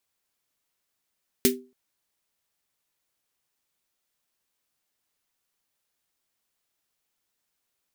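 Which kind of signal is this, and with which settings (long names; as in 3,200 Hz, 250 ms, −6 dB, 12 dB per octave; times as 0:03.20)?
synth snare length 0.28 s, tones 250 Hz, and 390 Hz, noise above 1,800 Hz, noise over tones 0.5 dB, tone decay 0.33 s, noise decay 0.15 s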